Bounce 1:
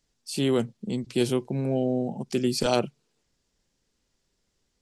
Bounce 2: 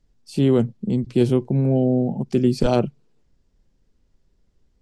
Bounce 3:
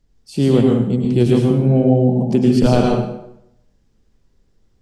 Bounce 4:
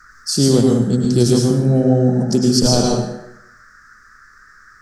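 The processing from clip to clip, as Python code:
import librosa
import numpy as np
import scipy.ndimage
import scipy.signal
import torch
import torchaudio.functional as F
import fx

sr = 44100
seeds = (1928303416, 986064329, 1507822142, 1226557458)

y1 = fx.tilt_eq(x, sr, slope=-3.0)
y1 = F.gain(torch.from_numpy(y1), 1.5).numpy()
y2 = fx.rev_plate(y1, sr, seeds[0], rt60_s=0.78, hf_ratio=0.8, predelay_ms=90, drr_db=-1.5)
y2 = F.gain(torch.from_numpy(y2), 2.0).numpy()
y3 = fx.high_shelf_res(y2, sr, hz=3800.0, db=13.0, q=3.0)
y3 = fx.rider(y3, sr, range_db=5, speed_s=0.5)
y3 = fx.dmg_noise_band(y3, sr, seeds[1], low_hz=1200.0, high_hz=1800.0, level_db=-47.0)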